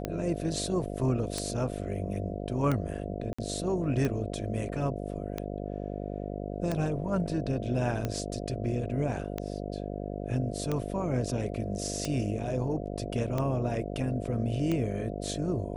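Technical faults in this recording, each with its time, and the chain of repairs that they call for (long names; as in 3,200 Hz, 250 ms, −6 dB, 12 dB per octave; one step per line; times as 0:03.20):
mains buzz 50 Hz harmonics 14 −36 dBFS
scratch tick 45 rpm −17 dBFS
0:03.33–0:03.38: drop-out 55 ms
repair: click removal
hum removal 50 Hz, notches 14
repair the gap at 0:03.33, 55 ms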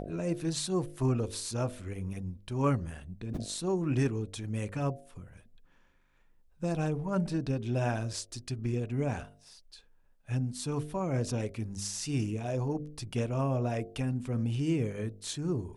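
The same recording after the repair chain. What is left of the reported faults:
none of them is left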